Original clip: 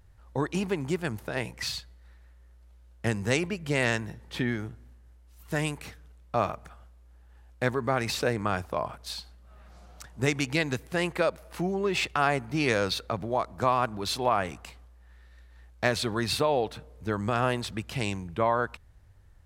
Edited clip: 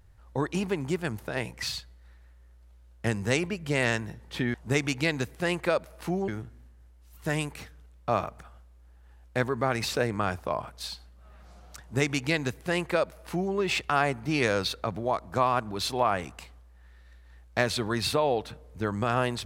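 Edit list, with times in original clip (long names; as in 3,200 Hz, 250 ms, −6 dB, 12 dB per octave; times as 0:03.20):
0:10.06–0:11.80: duplicate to 0:04.54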